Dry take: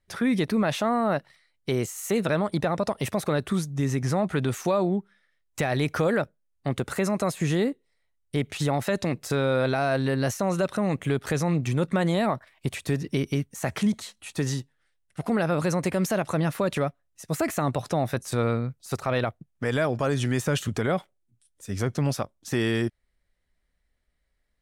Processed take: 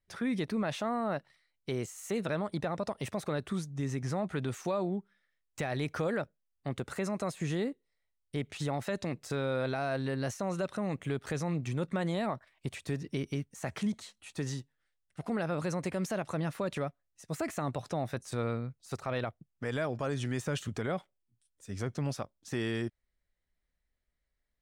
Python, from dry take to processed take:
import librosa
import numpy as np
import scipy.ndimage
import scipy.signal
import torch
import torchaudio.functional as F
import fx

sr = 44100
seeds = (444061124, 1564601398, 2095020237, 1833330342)

y = fx.peak_eq(x, sr, hz=12000.0, db=-9.5, octaves=0.31)
y = y * 10.0 ** (-8.5 / 20.0)